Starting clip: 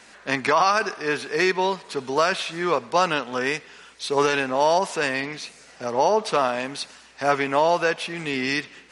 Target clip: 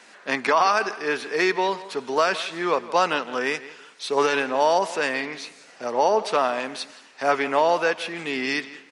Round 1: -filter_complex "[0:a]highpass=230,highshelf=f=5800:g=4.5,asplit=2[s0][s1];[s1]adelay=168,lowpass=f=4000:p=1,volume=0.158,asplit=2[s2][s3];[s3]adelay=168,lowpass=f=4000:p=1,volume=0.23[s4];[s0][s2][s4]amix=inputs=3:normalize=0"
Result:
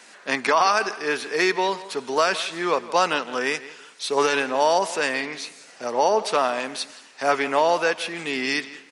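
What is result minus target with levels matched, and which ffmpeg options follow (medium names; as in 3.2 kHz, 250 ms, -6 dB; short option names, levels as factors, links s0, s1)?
8 kHz band +4.5 dB
-filter_complex "[0:a]highpass=230,highshelf=f=5800:g=-4,asplit=2[s0][s1];[s1]adelay=168,lowpass=f=4000:p=1,volume=0.158,asplit=2[s2][s3];[s3]adelay=168,lowpass=f=4000:p=1,volume=0.23[s4];[s0][s2][s4]amix=inputs=3:normalize=0"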